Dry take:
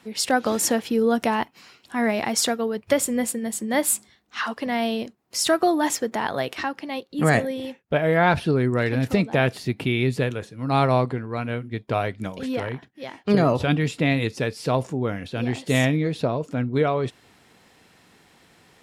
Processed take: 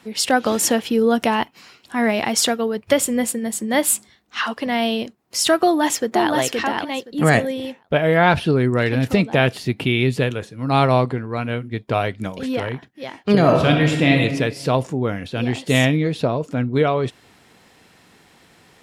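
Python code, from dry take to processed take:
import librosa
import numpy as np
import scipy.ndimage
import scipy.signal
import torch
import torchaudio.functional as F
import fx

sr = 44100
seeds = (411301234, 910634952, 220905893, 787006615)

y = fx.echo_throw(x, sr, start_s=5.63, length_s=0.69, ms=520, feedback_pct=15, wet_db=-3.0)
y = fx.reverb_throw(y, sr, start_s=13.38, length_s=0.79, rt60_s=1.2, drr_db=2.0)
y = fx.dynamic_eq(y, sr, hz=3000.0, q=3.4, threshold_db=-44.0, ratio=4.0, max_db=5)
y = y * 10.0 ** (3.5 / 20.0)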